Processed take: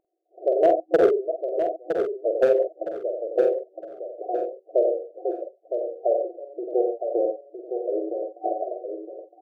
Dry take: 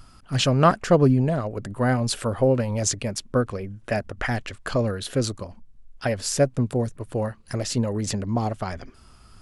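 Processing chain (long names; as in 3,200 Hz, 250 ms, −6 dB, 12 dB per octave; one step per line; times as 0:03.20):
loose part that buzzes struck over −24 dBFS, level −13 dBFS
de-essing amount 70%
reverb reduction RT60 1.2 s
in parallel at −3 dB: upward compression, threshold −26 dBFS
on the sum: single-tap delay 90 ms −5.5 dB
gate pattern "..xx.xx.x." 80 BPM −24 dB
brick-wall band-pass 320–760 Hz
hard clipping −11 dBFS, distortion −19 dB
double-tracking delay 47 ms −5.5 dB
on a send: repeating echo 962 ms, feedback 27%, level −7 dB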